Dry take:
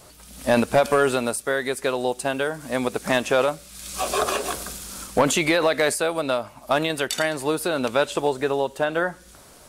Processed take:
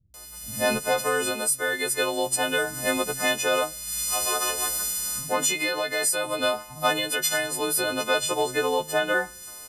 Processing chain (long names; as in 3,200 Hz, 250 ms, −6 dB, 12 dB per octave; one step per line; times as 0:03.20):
every partial snapped to a pitch grid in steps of 3 semitones
multiband delay without the direct sound lows, highs 140 ms, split 170 Hz
speech leveller 0.5 s
level −5 dB